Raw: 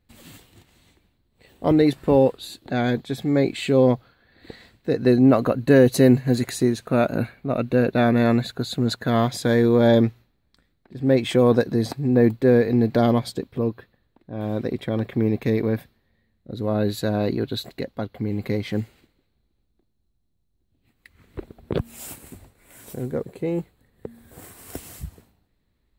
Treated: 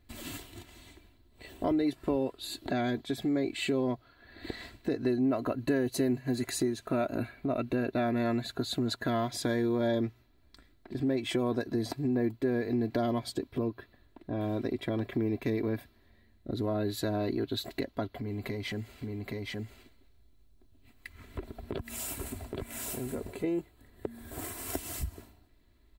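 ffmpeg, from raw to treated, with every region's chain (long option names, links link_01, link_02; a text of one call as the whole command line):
ffmpeg -i in.wav -filter_complex "[0:a]asettb=1/sr,asplit=3[link_01][link_02][link_03];[link_01]atrim=end=18.194[link_04];[link_02]atrim=start=18.19:end=23.44,asetpts=PTS-STARTPTS,afade=type=in:duration=0.004:curve=qsin,afade=type=out:start_time=5.246:duration=0.004:curve=qsin,acompressor=threshold=-40dB:ratio=2:attack=3.2:release=140:knee=1:detection=peak,bandreject=frequency=330:width=5.5,aecho=1:1:822:0.708,atrim=end_sample=231525[link_05];[link_03]atrim=start=23.436[link_06];[link_04][link_05]acrossfade=duration=0.004:curve1=hsin:curve2=qsin[link_07];[link_07][link_06]acrossfade=duration=0.004:curve1=qsin:curve2=hsin,aecho=1:1:3:0.58,acompressor=threshold=-36dB:ratio=3,volume=3.5dB" out.wav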